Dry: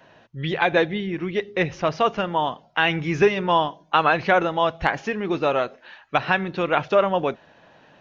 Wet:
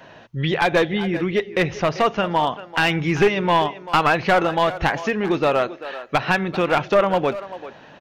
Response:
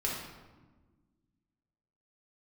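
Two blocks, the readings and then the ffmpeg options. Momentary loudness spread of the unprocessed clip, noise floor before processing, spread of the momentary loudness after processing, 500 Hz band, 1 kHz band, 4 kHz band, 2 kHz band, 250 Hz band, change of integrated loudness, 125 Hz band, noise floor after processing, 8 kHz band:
8 LU, -55 dBFS, 8 LU, +2.0 dB, +1.5 dB, +2.5 dB, +1.5 dB, +3.5 dB, +2.0 dB, +4.0 dB, -45 dBFS, no reading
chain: -filter_complex "[0:a]asplit=2[s0][s1];[s1]acompressor=threshold=0.0316:ratio=5,volume=1.41[s2];[s0][s2]amix=inputs=2:normalize=0,asplit=2[s3][s4];[s4]adelay=390,highpass=300,lowpass=3400,asoftclip=type=hard:threshold=0.282,volume=0.2[s5];[s3][s5]amix=inputs=2:normalize=0,aeval=exprs='clip(val(0),-1,0.211)':c=same"

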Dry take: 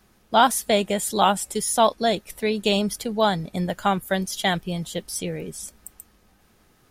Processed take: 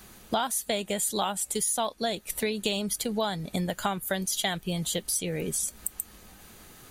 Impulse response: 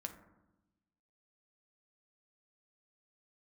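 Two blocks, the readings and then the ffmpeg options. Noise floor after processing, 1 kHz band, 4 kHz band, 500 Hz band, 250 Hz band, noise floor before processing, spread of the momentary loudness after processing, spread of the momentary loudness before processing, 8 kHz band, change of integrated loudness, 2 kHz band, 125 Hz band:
-53 dBFS, -10.5 dB, -4.5 dB, -8.0 dB, -6.5 dB, -60 dBFS, 5 LU, 11 LU, +0.5 dB, -6.0 dB, -7.0 dB, -5.0 dB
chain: -af "highshelf=f=3100:g=8,bandreject=f=5300:w=9,acompressor=threshold=0.02:ratio=6,volume=2.24"

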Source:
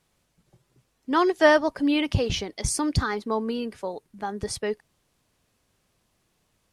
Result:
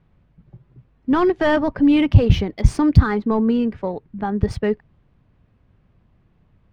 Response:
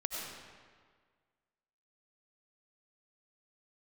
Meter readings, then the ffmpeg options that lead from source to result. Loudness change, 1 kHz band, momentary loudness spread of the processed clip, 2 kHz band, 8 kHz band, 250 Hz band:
+6.5 dB, +1.5 dB, 13 LU, -0.5 dB, under -10 dB, +9.0 dB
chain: -af "apsyclip=8.91,adynamicsmooth=sensitivity=1:basefreq=3700,bass=f=250:g=13,treble=f=4000:g=-15,volume=0.2"

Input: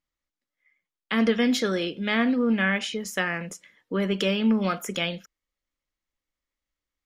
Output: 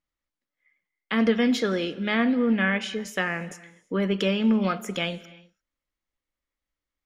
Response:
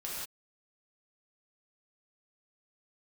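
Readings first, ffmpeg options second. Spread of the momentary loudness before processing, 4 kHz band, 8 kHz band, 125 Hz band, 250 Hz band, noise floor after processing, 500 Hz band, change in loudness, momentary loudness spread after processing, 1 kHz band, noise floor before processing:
9 LU, -2.0 dB, -4.5 dB, +0.5 dB, +0.5 dB, under -85 dBFS, +0.5 dB, 0.0 dB, 9 LU, 0.0 dB, under -85 dBFS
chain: -filter_complex "[0:a]highshelf=f=4600:g=-7,asplit=2[s0][s1];[1:a]atrim=start_sample=2205,asetrate=24696,aresample=44100[s2];[s1][s2]afir=irnorm=-1:irlink=0,volume=0.0708[s3];[s0][s3]amix=inputs=2:normalize=0"

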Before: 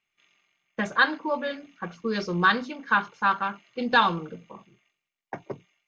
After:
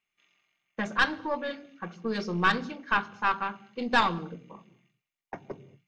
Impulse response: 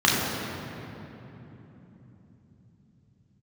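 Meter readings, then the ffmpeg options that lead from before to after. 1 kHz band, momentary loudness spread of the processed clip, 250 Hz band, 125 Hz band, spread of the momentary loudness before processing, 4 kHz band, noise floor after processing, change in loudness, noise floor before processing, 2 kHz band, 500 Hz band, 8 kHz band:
-3.5 dB, 18 LU, -2.5 dB, -2.0 dB, 19 LU, -3.0 dB, under -85 dBFS, -3.5 dB, -85 dBFS, -4.0 dB, -3.5 dB, no reading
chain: -filter_complex "[0:a]aeval=exprs='(tanh(3.55*val(0)+0.7)-tanh(0.7))/3.55':c=same,asplit=2[s0][s1];[s1]equalizer=f=125:t=o:w=1:g=6,equalizer=f=1000:t=o:w=1:g=-5,equalizer=f=2000:t=o:w=1:g=-9[s2];[1:a]atrim=start_sample=2205,afade=t=out:st=0.29:d=0.01,atrim=end_sample=13230[s3];[s2][s3]afir=irnorm=-1:irlink=0,volume=0.0251[s4];[s0][s4]amix=inputs=2:normalize=0"

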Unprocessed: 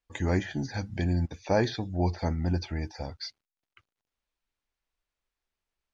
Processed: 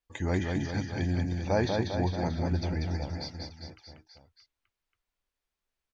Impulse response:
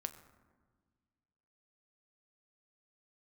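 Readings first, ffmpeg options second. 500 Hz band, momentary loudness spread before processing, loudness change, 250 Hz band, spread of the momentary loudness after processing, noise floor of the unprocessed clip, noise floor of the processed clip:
-0.5 dB, 11 LU, -0.5 dB, 0.0 dB, 12 LU, under -85 dBFS, under -85 dBFS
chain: -af "aecho=1:1:190|399|628.9|881.8|1160:0.631|0.398|0.251|0.158|0.1,volume=0.75"

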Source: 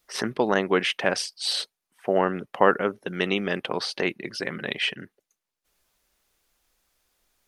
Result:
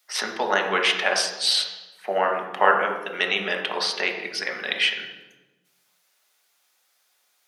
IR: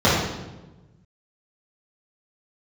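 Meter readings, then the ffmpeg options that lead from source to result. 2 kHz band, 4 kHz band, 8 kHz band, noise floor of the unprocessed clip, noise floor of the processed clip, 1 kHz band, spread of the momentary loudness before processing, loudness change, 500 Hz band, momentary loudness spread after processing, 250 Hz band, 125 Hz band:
+5.0 dB, +5.5 dB, +5.0 dB, -85 dBFS, -68 dBFS, +4.0 dB, 9 LU, +2.5 dB, -1.5 dB, 8 LU, -8.5 dB, under -10 dB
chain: -filter_complex "[0:a]highpass=1000,asplit=2[s0][s1];[1:a]atrim=start_sample=2205,lowshelf=f=390:g=9[s2];[s1][s2]afir=irnorm=-1:irlink=0,volume=0.0531[s3];[s0][s3]amix=inputs=2:normalize=0,volume=1.68"

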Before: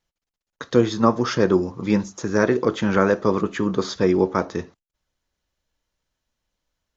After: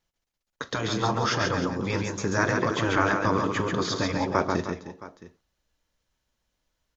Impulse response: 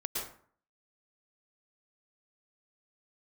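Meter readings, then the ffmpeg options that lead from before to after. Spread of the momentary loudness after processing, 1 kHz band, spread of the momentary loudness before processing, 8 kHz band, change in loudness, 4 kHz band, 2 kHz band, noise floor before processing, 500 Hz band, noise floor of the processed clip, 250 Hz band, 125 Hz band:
12 LU, -0.5 dB, 6 LU, no reading, -5.0 dB, +1.5 dB, +1.5 dB, under -85 dBFS, -8.0 dB, -83 dBFS, -7.5 dB, -2.5 dB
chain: -af "afftfilt=real='re*lt(hypot(re,im),0.501)':imag='im*lt(hypot(re,im),0.501)':win_size=1024:overlap=0.75,aecho=1:1:41|137|308|668:0.106|0.596|0.237|0.126"

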